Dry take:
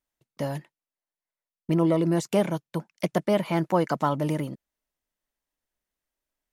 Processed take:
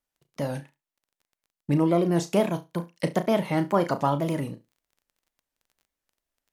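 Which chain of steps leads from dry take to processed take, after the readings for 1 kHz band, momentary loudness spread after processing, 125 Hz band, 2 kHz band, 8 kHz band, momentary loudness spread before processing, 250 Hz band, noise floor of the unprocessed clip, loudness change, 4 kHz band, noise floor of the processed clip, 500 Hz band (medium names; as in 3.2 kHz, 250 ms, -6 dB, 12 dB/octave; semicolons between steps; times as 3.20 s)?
+1.0 dB, 13 LU, 0.0 dB, +0.5 dB, +0.5 dB, 13 LU, 0.0 dB, under -85 dBFS, +0.5 dB, 0.0 dB, under -85 dBFS, +0.5 dB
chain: wow and flutter 150 cents; flutter echo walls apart 6 m, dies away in 0.21 s; crackle 19 per s -49 dBFS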